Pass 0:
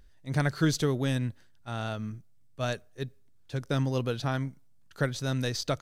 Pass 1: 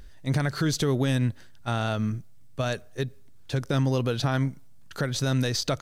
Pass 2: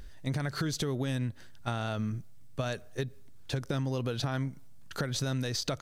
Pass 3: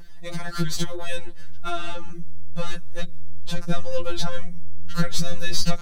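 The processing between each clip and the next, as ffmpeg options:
ffmpeg -i in.wav -filter_complex "[0:a]asplit=2[link_01][link_02];[link_02]acompressor=threshold=-36dB:ratio=6,volume=3dB[link_03];[link_01][link_03]amix=inputs=2:normalize=0,alimiter=limit=-20dB:level=0:latency=1:release=87,volume=3.5dB" out.wav
ffmpeg -i in.wav -af "acompressor=threshold=-29dB:ratio=6" out.wav
ffmpeg -i in.wav -af "aeval=exprs='0.126*(cos(1*acos(clip(val(0)/0.126,-1,1)))-cos(1*PI/2))+0.00794*(cos(8*acos(clip(val(0)/0.126,-1,1)))-cos(8*PI/2))':channel_layout=same,asubboost=boost=8:cutoff=120,afftfilt=real='re*2.83*eq(mod(b,8),0)':imag='im*2.83*eq(mod(b,8),0)':win_size=2048:overlap=0.75,volume=7.5dB" out.wav

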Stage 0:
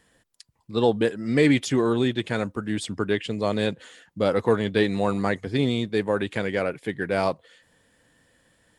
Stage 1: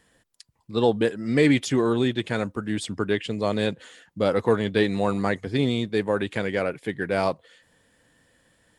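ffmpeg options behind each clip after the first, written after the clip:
ffmpeg -i in.wav -af anull out.wav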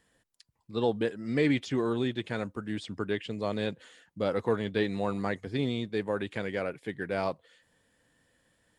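ffmpeg -i in.wav -filter_complex "[0:a]acrossover=split=5800[link_01][link_02];[link_02]acompressor=threshold=-54dB:ratio=4:attack=1:release=60[link_03];[link_01][link_03]amix=inputs=2:normalize=0,volume=-7dB" out.wav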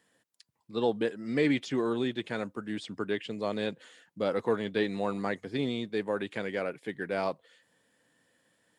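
ffmpeg -i in.wav -af "highpass=160" out.wav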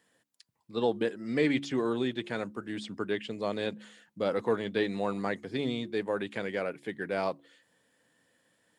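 ffmpeg -i in.wav -af "bandreject=frequency=70.39:width_type=h:width=4,bandreject=frequency=140.78:width_type=h:width=4,bandreject=frequency=211.17:width_type=h:width=4,bandreject=frequency=281.56:width_type=h:width=4,bandreject=frequency=351.95:width_type=h:width=4" out.wav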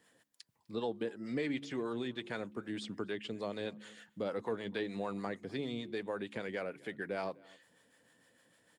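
ffmpeg -i in.wav -filter_complex "[0:a]acompressor=threshold=-43dB:ratio=2,acrossover=split=560[link_01][link_02];[link_01]aeval=exprs='val(0)*(1-0.5/2+0.5/2*cos(2*PI*6.6*n/s))':channel_layout=same[link_03];[link_02]aeval=exprs='val(0)*(1-0.5/2-0.5/2*cos(2*PI*6.6*n/s))':channel_layout=same[link_04];[link_03][link_04]amix=inputs=2:normalize=0,asplit=2[link_05][link_06];[link_06]adelay=250.7,volume=-24dB,highshelf=frequency=4000:gain=-5.64[link_07];[link_05][link_07]amix=inputs=2:normalize=0,volume=4dB" out.wav

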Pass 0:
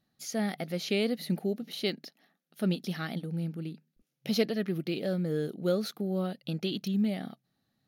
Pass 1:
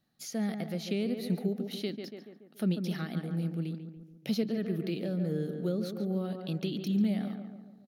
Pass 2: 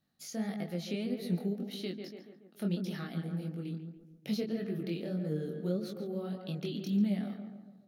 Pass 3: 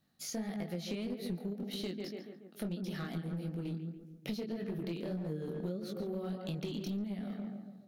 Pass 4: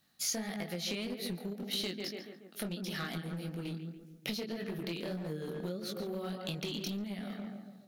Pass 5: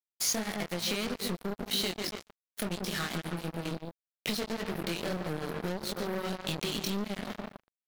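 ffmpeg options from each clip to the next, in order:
ffmpeg -i in.wav -filter_complex "[0:a]asplit=2[link_01][link_02];[link_02]adelay=142,lowpass=frequency=1700:poles=1,volume=-8dB,asplit=2[link_03][link_04];[link_04]adelay=142,lowpass=frequency=1700:poles=1,volume=0.54,asplit=2[link_05][link_06];[link_06]adelay=142,lowpass=frequency=1700:poles=1,volume=0.54,asplit=2[link_07][link_08];[link_08]adelay=142,lowpass=frequency=1700:poles=1,volume=0.54,asplit=2[link_09][link_10];[link_10]adelay=142,lowpass=frequency=1700:poles=1,volume=0.54,asplit=2[link_11][link_12];[link_12]adelay=142,lowpass=frequency=1700:poles=1,volume=0.54[link_13];[link_01][link_03][link_05][link_07][link_09][link_11][link_13]amix=inputs=7:normalize=0,acrossover=split=360[link_14][link_15];[link_15]acompressor=threshold=-39dB:ratio=6[link_16];[link_14][link_16]amix=inputs=2:normalize=0" out.wav
ffmpeg -i in.wav -af "flanger=delay=19.5:depth=5.2:speed=1.7" out.wav
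ffmpeg -i in.wav -af "acompressor=threshold=-38dB:ratio=10,aeval=exprs='clip(val(0),-1,0.01)':channel_layout=same,volume=4dB" out.wav
ffmpeg -i in.wav -af "tiltshelf=frequency=850:gain=-5.5,volume=3.5dB" out.wav
ffmpeg -i in.wav -af "acrusher=bits=5:mix=0:aa=0.5,volume=4.5dB" out.wav

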